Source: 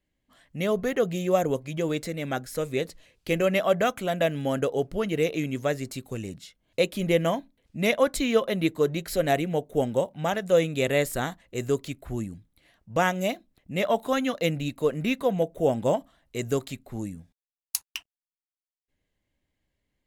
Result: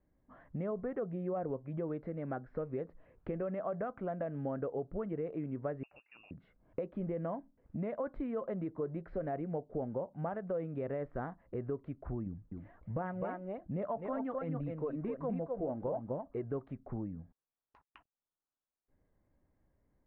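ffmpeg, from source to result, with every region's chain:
-filter_complex "[0:a]asettb=1/sr,asplit=3[a][b][c];[a]atrim=end=5.834[d];[b]atrim=start=5.83:end=6.31,asetpts=PTS-STARTPTS,afade=t=in:d=0.004:c=qsin,afade=t=out:st=0.476:d=0.004:c=qsin,tiltshelf=f=800:g=4.5,lowpass=f=2.5k:t=q:w=0.5098,lowpass=f=2.5k:t=q:w=0.6013,lowpass=f=2.5k:t=q:w=0.9,lowpass=f=2.5k:t=q:w=2.563,afreqshift=-2900[e];[c]atrim=start=6.306[f];[d][e]acrossfade=d=0.004:c1=hsin:c2=qsin[g];[g][f]acrossfade=d=0.004:c1=qsin:c2=hsin,asettb=1/sr,asplit=3[h][i][j];[h]atrim=end=12.264[k];[i]atrim=start=12.26:end=16.44,asetpts=PTS-STARTPTS,afade=t=in:d=0.004:c=qsin,afade=t=out:st=4.176:d=0.004:c=qsin,aecho=1:1:254:0.501,atrim=end_sample=184338,aphaser=in_gain=1:out_gain=1:delay=3.6:decay=0.41:speed=1.3:type=triangular[l];[j]atrim=start=16.436[m];[k][l]acrossfade=d=0.004:c1=hsin:c2=qsin[n];[n][m]acrossfade=d=0.004:c1=qsin:c2=hsin,alimiter=limit=-16dB:level=0:latency=1:release=19,acompressor=threshold=-45dB:ratio=3,lowpass=f=1.4k:w=0.5412,lowpass=f=1.4k:w=1.3066,volume=5dB"

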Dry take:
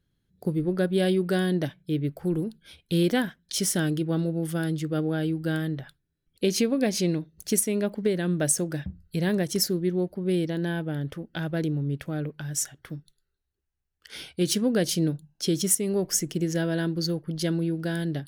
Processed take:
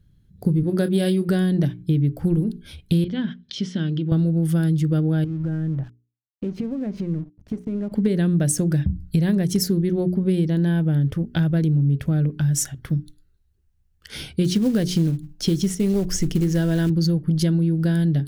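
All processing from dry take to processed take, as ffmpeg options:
-filter_complex "[0:a]asettb=1/sr,asplit=3[a][b][c];[a]atrim=end=0.634[d];[b]atrim=start=0.63:end=1.29,asetpts=PTS-STARTPTS,afade=t=in:d=0.004:c=qsin,afade=t=out:st=0.656:d=0.004:c=qsin,highpass=150,bass=f=250:g=-1,treble=f=4k:g=6,asplit=2[e][f];[f]adelay=25,volume=-10dB[g];[e][g]amix=inputs=2:normalize=0,atrim=end_sample=29106[h];[c]atrim=start=1.286[i];[d][h]acrossfade=d=0.004:c1=hsin:c2=qsin[j];[j][i]acrossfade=d=0.004:c1=qsin:c2=hsin,asettb=1/sr,asplit=3[k][l][m];[k]atrim=end=3.044[n];[l]atrim=start=3.04:end=4.12,asetpts=PTS-STARTPTS,afade=t=in:d=0.004:c=qsin,afade=t=out:st=1.076:d=0.004:c=qsin,acompressor=threshold=-37dB:ratio=2.5:attack=3.2:release=140:knee=1:detection=peak,highpass=150,equalizer=f=230:t=q:w=4:g=5,equalizer=f=720:t=q:w=4:g=-5,equalizer=f=3.2k:t=q:w=4:g=7,lowpass=f=4.8k:w=0.5412,lowpass=f=4.8k:w=1.3066[o];[m]atrim=start=4.116[p];[n][o]acrossfade=d=0.004:c1=hsin:c2=qsin[q];[q][p]acrossfade=d=0.004:c1=qsin:c2=hsin,asettb=1/sr,asplit=3[r][s][t];[r]atrim=end=5.244[u];[s]atrim=start=5.24:end=7.92,asetpts=PTS-STARTPTS,afade=t=in:d=0.004:c=qsin,afade=t=out:st=2.676:d=0.004:c=qsin,lowpass=1.3k,acompressor=threshold=-36dB:ratio=4:attack=3.2:release=140:knee=1:detection=peak,aeval=exprs='sgn(val(0))*max(abs(val(0))-0.00178,0)':c=same[v];[t]atrim=start=7.916[w];[u][v]acrossfade=d=0.004:c1=hsin:c2=qsin[x];[x][w]acrossfade=d=0.004:c1=qsin:c2=hsin,asettb=1/sr,asplit=3[y][z][aa];[y]atrim=end=14.444[ab];[z]atrim=start=14.44:end=16.9,asetpts=PTS-STARTPTS,afade=t=in:d=0.004:c=qsin,afade=t=out:st=2.456:d=0.004:c=qsin,acrossover=split=5700[ac][ad];[ad]acompressor=threshold=-40dB:ratio=4:attack=1:release=60[ae];[ac][ae]amix=inputs=2:normalize=0,acrusher=bits=5:mode=log:mix=0:aa=0.000001,asubboost=boost=8.5:cutoff=51[af];[aa]atrim=start=16.896[ag];[ab][af]acrossfade=d=0.004:c1=hsin:c2=qsin[ah];[ah][ag]acrossfade=d=0.004:c1=qsin:c2=hsin,bass=f=250:g=15,treble=f=4k:g=1,bandreject=f=60:t=h:w=6,bandreject=f=120:t=h:w=6,bandreject=f=180:t=h:w=6,bandreject=f=240:t=h:w=6,bandreject=f=300:t=h:w=6,bandreject=f=360:t=h:w=6,bandreject=f=420:t=h:w=6,acompressor=threshold=-21dB:ratio=6,volume=4.5dB"

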